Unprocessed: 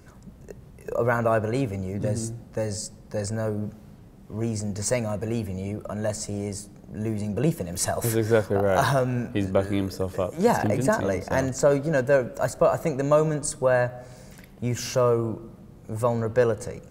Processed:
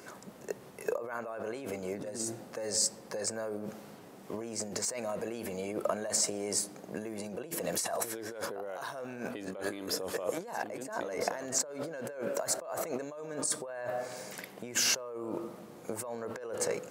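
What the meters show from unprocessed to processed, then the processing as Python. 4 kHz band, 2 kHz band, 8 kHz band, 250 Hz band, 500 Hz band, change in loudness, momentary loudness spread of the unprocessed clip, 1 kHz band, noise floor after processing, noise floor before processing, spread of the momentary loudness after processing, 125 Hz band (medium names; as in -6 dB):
+1.5 dB, -9.0 dB, +1.0 dB, -13.0 dB, -12.0 dB, -10.0 dB, 11 LU, -11.0 dB, -51 dBFS, -48 dBFS, 12 LU, -22.5 dB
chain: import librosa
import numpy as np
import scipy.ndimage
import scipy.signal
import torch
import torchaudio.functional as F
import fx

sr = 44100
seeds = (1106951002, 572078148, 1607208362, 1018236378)

y = fx.over_compress(x, sr, threshold_db=-33.0, ratio=-1.0)
y = scipy.signal.sosfilt(scipy.signal.butter(2, 370.0, 'highpass', fs=sr, output='sos'), y)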